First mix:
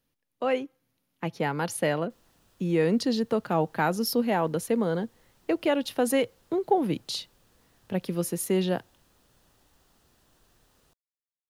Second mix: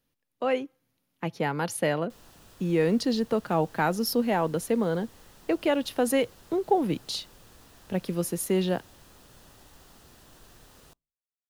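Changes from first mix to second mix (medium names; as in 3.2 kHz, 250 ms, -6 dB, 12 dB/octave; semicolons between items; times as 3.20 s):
background +9.5 dB; reverb: on, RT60 0.30 s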